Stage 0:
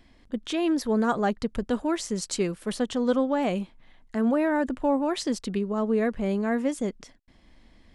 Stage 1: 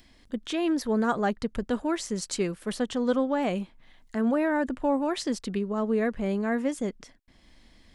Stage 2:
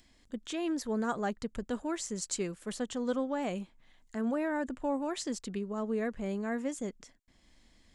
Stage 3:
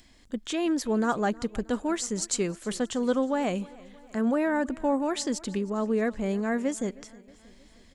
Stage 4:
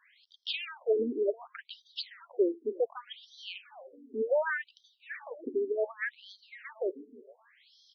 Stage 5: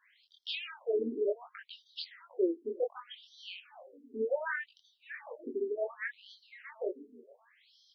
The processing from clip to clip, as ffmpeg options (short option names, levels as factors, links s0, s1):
-filter_complex "[0:a]equalizer=f=1700:t=o:w=0.77:g=2,acrossover=split=3300[s0][s1];[s1]acompressor=mode=upward:threshold=0.00158:ratio=2.5[s2];[s0][s2]amix=inputs=2:normalize=0,volume=0.841"
-af "equalizer=f=7200:w=2.6:g=8.5,volume=0.447"
-af "aecho=1:1:315|630|945|1260:0.0794|0.0445|0.0249|0.0139,volume=2.11"
-af "afftfilt=real='re*between(b*sr/1024,310*pow(4500/310,0.5+0.5*sin(2*PI*0.67*pts/sr))/1.41,310*pow(4500/310,0.5+0.5*sin(2*PI*0.67*pts/sr))*1.41)':imag='im*between(b*sr/1024,310*pow(4500/310,0.5+0.5*sin(2*PI*0.67*pts/sr))/1.41,310*pow(4500/310,0.5+0.5*sin(2*PI*0.67*pts/sr))*1.41)':win_size=1024:overlap=0.75,volume=1.5"
-af "flanger=delay=19.5:depth=7.3:speed=1.3"